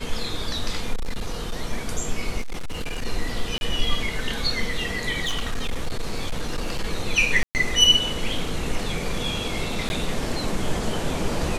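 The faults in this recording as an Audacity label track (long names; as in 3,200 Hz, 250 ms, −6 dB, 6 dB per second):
0.930000	1.570000	clipping −21.5 dBFS
2.400000	3.060000	clipping −24 dBFS
3.580000	3.610000	drop-out 31 ms
5.230000	6.850000	clipping −20.5 dBFS
7.430000	7.550000	drop-out 119 ms
9.890000	9.900000	drop-out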